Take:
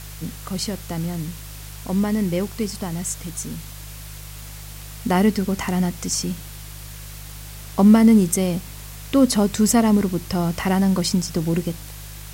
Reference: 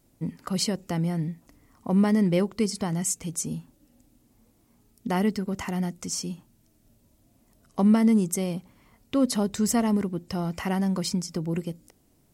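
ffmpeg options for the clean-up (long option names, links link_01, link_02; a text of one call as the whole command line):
ffmpeg -i in.wav -af "bandreject=frequency=51:width_type=h:width=4,bandreject=frequency=102:width_type=h:width=4,bandreject=frequency=153:width_type=h:width=4,afwtdn=0.01,asetnsamples=nb_out_samples=441:pad=0,asendcmd='4.42 volume volume -7dB',volume=0dB" out.wav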